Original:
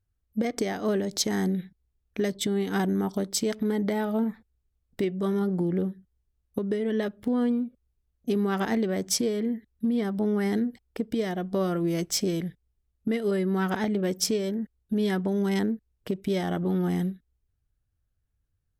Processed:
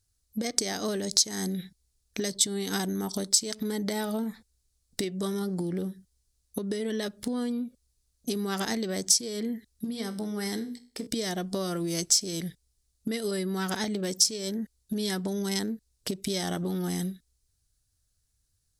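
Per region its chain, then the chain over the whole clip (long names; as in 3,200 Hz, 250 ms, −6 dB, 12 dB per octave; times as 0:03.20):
0:09.84–0:11.07: mains-hum notches 60/120/180/240/300/360/420/480/540 Hz + tuned comb filter 62 Hz, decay 0.44 s
whole clip: flat-topped bell 6,500 Hz +11.5 dB; downward compressor 6 to 1, threshold −28 dBFS; high-shelf EQ 2,300 Hz +8 dB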